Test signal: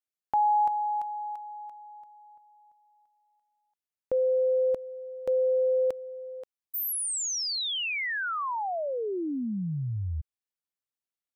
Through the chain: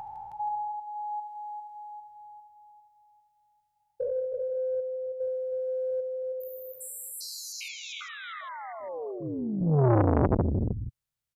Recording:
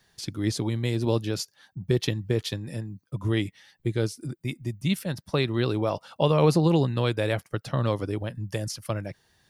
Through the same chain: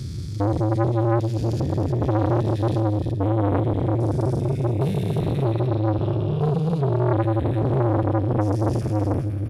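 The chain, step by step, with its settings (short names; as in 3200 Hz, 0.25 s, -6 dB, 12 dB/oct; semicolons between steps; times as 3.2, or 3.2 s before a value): stepped spectrum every 0.4 s; dynamic EQ 800 Hz, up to -4 dB, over -44 dBFS, Q 1.3; vocal rider within 5 dB 0.5 s; resonant low shelf 180 Hz +13.5 dB, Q 1.5; tapped delay 74/158/317/476 ms -19.5/-12.5/-6/-14.5 dB; core saturation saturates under 620 Hz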